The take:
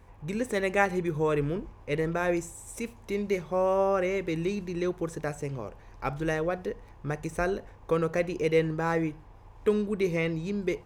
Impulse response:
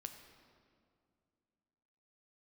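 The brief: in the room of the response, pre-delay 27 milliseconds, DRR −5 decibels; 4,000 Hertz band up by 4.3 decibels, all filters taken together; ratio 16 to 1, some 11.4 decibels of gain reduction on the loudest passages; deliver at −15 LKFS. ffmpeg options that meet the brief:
-filter_complex "[0:a]equalizer=frequency=4000:width_type=o:gain=5.5,acompressor=threshold=-29dB:ratio=16,asplit=2[link_01][link_02];[1:a]atrim=start_sample=2205,adelay=27[link_03];[link_02][link_03]afir=irnorm=-1:irlink=0,volume=9dB[link_04];[link_01][link_04]amix=inputs=2:normalize=0,volume=14dB"

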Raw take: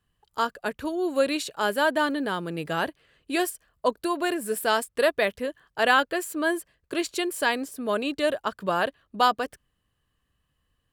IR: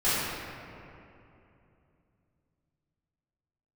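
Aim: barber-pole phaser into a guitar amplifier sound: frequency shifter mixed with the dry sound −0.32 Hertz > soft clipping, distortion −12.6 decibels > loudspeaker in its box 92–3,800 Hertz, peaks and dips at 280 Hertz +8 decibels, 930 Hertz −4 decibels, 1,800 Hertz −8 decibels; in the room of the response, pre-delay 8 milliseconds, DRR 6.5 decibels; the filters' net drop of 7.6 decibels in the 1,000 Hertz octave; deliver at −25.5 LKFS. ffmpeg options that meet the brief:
-filter_complex "[0:a]equalizer=frequency=1000:width_type=o:gain=-8,asplit=2[link_01][link_02];[1:a]atrim=start_sample=2205,adelay=8[link_03];[link_02][link_03]afir=irnorm=-1:irlink=0,volume=-21dB[link_04];[link_01][link_04]amix=inputs=2:normalize=0,asplit=2[link_05][link_06];[link_06]afreqshift=-0.32[link_07];[link_05][link_07]amix=inputs=2:normalize=1,asoftclip=threshold=-25.5dB,highpass=92,equalizer=frequency=280:width_type=q:width=4:gain=8,equalizer=frequency=930:width_type=q:width=4:gain=-4,equalizer=frequency=1800:width_type=q:width=4:gain=-8,lowpass=frequency=3800:width=0.5412,lowpass=frequency=3800:width=1.3066,volume=7.5dB"

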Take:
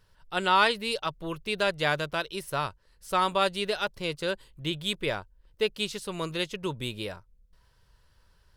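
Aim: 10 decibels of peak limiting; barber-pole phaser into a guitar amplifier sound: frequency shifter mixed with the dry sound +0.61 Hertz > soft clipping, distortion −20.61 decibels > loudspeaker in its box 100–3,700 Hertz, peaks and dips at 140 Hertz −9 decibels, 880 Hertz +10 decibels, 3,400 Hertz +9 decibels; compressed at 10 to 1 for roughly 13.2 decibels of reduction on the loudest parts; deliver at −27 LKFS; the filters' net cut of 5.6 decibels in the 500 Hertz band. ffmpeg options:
ffmpeg -i in.wav -filter_complex "[0:a]equalizer=frequency=500:width_type=o:gain=-8,acompressor=threshold=-32dB:ratio=10,alimiter=level_in=6dB:limit=-24dB:level=0:latency=1,volume=-6dB,asplit=2[link_01][link_02];[link_02]afreqshift=0.61[link_03];[link_01][link_03]amix=inputs=2:normalize=1,asoftclip=threshold=-33.5dB,highpass=100,equalizer=frequency=140:width_type=q:width=4:gain=-9,equalizer=frequency=880:width_type=q:width=4:gain=10,equalizer=frequency=3400:width_type=q:width=4:gain=9,lowpass=frequency=3700:width=0.5412,lowpass=frequency=3700:width=1.3066,volume=17dB" out.wav

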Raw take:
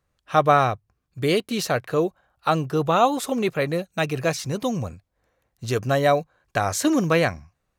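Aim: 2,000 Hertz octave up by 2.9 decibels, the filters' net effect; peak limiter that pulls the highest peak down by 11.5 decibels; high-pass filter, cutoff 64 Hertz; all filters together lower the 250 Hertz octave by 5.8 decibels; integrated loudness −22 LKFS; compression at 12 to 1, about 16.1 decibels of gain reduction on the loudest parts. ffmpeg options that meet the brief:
ffmpeg -i in.wav -af "highpass=64,equalizer=frequency=250:width_type=o:gain=-8.5,equalizer=frequency=2000:width_type=o:gain=4,acompressor=threshold=-28dB:ratio=12,volume=14dB,alimiter=limit=-10.5dB:level=0:latency=1" out.wav

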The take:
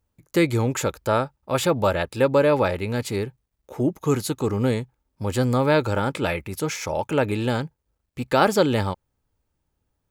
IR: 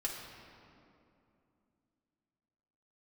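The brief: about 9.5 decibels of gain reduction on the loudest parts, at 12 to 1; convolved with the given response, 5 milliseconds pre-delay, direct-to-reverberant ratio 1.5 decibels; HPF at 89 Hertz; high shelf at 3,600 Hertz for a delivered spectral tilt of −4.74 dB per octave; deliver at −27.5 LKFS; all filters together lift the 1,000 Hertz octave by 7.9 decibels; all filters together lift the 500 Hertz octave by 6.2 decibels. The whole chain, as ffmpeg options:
-filter_complex "[0:a]highpass=89,equalizer=frequency=500:width_type=o:gain=5,equalizer=frequency=1000:width_type=o:gain=8,highshelf=frequency=3600:gain=7,acompressor=threshold=-16dB:ratio=12,asplit=2[link_01][link_02];[1:a]atrim=start_sample=2205,adelay=5[link_03];[link_02][link_03]afir=irnorm=-1:irlink=0,volume=-3.5dB[link_04];[link_01][link_04]amix=inputs=2:normalize=0,volume=-6.5dB"

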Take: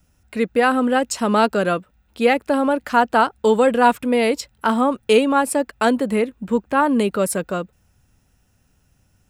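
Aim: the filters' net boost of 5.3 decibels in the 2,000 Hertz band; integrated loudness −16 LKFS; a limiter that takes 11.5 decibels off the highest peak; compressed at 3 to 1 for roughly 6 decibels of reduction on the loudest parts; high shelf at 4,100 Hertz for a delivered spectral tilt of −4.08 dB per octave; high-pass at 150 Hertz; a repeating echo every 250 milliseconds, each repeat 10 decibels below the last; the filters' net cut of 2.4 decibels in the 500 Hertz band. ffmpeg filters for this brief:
ffmpeg -i in.wav -af "highpass=150,equalizer=frequency=500:width_type=o:gain=-3,equalizer=frequency=2000:width_type=o:gain=8.5,highshelf=frequency=4100:gain=-4.5,acompressor=threshold=-17dB:ratio=3,alimiter=limit=-17dB:level=0:latency=1,aecho=1:1:250|500|750|1000:0.316|0.101|0.0324|0.0104,volume=11dB" out.wav

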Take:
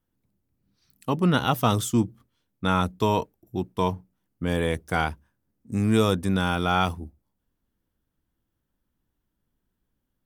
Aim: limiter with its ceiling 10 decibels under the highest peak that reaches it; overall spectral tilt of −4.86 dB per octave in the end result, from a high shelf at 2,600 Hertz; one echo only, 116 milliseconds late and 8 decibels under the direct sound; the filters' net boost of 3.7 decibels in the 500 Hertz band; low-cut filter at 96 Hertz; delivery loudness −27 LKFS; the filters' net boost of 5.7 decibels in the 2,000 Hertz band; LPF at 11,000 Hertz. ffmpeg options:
ffmpeg -i in.wav -af "highpass=96,lowpass=11000,equalizer=frequency=500:width_type=o:gain=4,equalizer=frequency=2000:width_type=o:gain=6,highshelf=frequency=2600:gain=5,alimiter=limit=-13dB:level=0:latency=1,aecho=1:1:116:0.398,volume=-1dB" out.wav

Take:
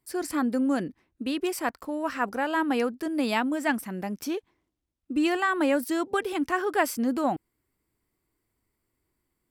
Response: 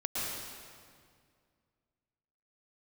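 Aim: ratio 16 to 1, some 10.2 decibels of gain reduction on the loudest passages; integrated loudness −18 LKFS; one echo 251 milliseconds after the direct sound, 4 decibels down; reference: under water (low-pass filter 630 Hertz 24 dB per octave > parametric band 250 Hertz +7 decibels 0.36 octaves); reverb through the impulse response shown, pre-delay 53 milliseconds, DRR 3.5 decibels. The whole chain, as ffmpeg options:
-filter_complex "[0:a]acompressor=threshold=-30dB:ratio=16,aecho=1:1:251:0.631,asplit=2[link_01][link_02];[1:a]atrim=start_sample=2205,adelay=53[link_03];[link_02][link_03]afir=irnorm=-1:irlink=0,volume=-9.5dB[link_04];[link_01][link_04]amix=inputs=2:normalize=0,lowpass=frequency=630:width=0.5412,lowpass=frequency=630:width=1.3066,equalizer=frequency=250:width_type=o:width=0.36:gain=7,volume=13dB"

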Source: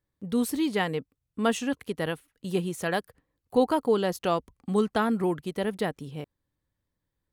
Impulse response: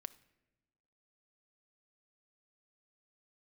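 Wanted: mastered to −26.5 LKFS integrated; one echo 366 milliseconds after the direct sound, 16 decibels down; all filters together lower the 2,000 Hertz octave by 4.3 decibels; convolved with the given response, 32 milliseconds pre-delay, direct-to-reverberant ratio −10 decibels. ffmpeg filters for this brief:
-filter_complex "[0:a]equalizer=frequency=2000:width_type=o:gain=-5.5,aecho=1:1:366:0.158,asplit=2[link_01][link_02];[1:a]atrim=start_sample=2205,adelay=32[link_03];[link_02][link_03]afir=irnorm=-1:irlink=0,volume=15dB[link_04];[link_01][link_04]amix=inputs=2:normalize=0,volume=-8.5dB"

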